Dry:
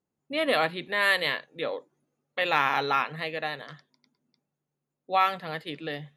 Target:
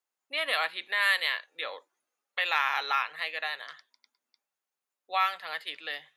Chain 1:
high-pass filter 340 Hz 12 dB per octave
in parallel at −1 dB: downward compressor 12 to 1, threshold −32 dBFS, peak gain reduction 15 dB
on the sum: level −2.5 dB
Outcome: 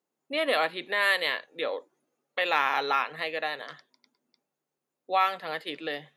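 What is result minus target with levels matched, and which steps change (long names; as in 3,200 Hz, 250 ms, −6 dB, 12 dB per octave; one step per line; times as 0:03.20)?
250 Hz band +16.0 dB
change: high-pass filter 1,100 Hz 12 dB per octave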